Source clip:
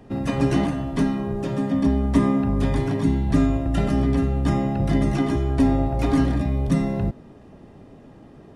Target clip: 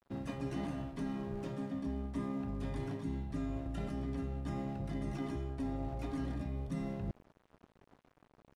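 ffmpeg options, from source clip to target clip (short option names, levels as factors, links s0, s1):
-af "aeval=exprs='sgn(val(0))*max(abs(val(0))-0.00841,0)':c=same,areverse,acompressor=threshold=0.0251:ratio=4,areverse,volume=0.531"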